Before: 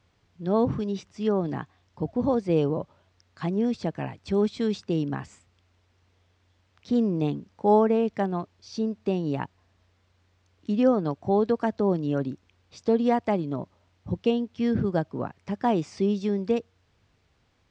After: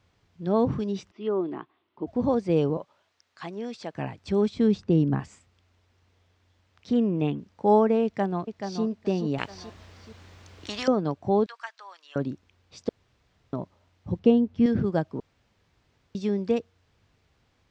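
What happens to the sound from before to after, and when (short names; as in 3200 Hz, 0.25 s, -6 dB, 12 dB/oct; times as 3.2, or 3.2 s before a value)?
1.11–2.07 speaker cabinet 340–3100 Hz, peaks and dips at 350 Hz +9 dB, 520 Hz -9 dB, 770 Hz -6 dB, 1700 Hz -9 dB, 2400 Hz -4 dB
2.77–3.95 HPF 830 Hz 6 dB/oct
4.54–5.2 tilt -2.5 dB/oct
6.93–7.39 resonant high shelf 3600 Hz -6 dB, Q 3
8.04–8.83 echo throw 0.43 s, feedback 20%, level -7 dB
9.38–10.88 spectral compressor 4:1
11.46–12.16 HPF 1200 Hz 24 dB/oct
12.89–13.53 room tone
14.19–14.66 tilt -3 dB/oct
15.2–16.15 room tone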